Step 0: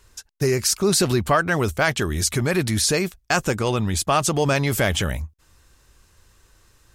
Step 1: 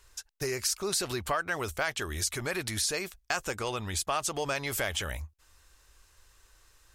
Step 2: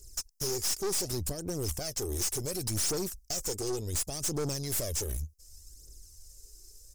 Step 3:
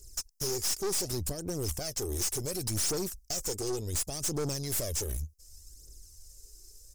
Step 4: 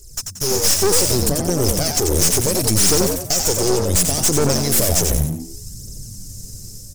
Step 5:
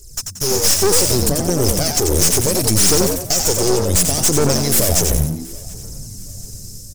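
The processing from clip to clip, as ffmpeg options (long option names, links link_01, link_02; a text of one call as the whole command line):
ffmpeg -i in.wav -af "equalizer=frequency=170:width_type=o:width=2.2:gain=-13,acompressor=threshold=-28dB:ratio=2,volume=-3dB" out.wav
ffmpeg -i in.wav -af "firequalizer=gain_entry='entry(380,0);entry(1000,-30);entry(3500,-17);entry(5100,6)':delay=0.05:min_phase=1,aphaser=in_gain=1:out_gain=1:delay=2.8:decay=0.56:speed=0.68:type=triangular,aeval=exprs='(tanh(50.1*val(0)+0.5)-tanh(0.5))/50.1':channel_layout=same,volume=5.5dB" out.wav
ffmpeg -i in.wav -af anull out.wav
ffmpeg -i in.wav -filter_complex "[0:a]asplit=5[link_01][link_02][link_03][link_04][link_05];[link_02]adelay=90,afreqshift=86,volume=-4dB[link_06];[link_03]adelay=180,afreqshift=172,volume=-13.6dB[link_07];[link_04]adelay=270,afreqshift=258,volume=-23.3dB[link_08];[link_05]adelay=360,afreqshift=344,volume=-32.9dB[link_09];[link_01][link_06][link_07][link_08][link_09]amix=inputs=5:normalize=0,aeval=exprs='clip(val(0),-1,0.0126)':channel_layout=same,dynaudnorm=framelen=110:gausssize=9:maxgain=6.5dB,volume=9dB" out.wav
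ffmpeg -i in.wav -af "aecho=1:1:729|1458:0.0668|0.0234,volume=1.5dB" out.wav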